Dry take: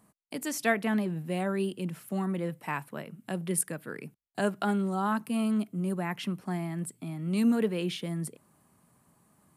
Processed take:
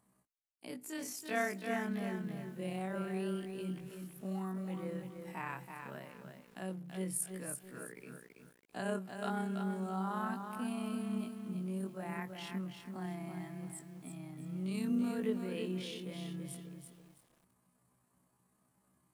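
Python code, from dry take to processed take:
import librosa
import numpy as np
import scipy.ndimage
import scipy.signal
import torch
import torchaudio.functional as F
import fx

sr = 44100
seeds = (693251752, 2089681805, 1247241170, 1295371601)

y = fx.stretch_grains(x, sr, factor=2.0, grain_ms=64.0)
y = fx.echo_crushed(y, sr, ms=330, feedback_pct=35, bits=9, wet_db=-6.0)
y = F.gain(torch.from_numpy(y), -8.5).numpy()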